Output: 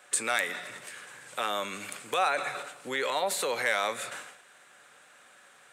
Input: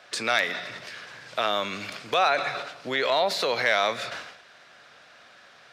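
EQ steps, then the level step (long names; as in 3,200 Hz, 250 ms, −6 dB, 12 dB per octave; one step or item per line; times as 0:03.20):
high-pass filter 190 Hz 6 dB per octave
Butterworth band-reject 660 Hz, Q 7.8
high shelf with overshoot 6,500 Hz +9.5 dB, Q 3
−3.5 dB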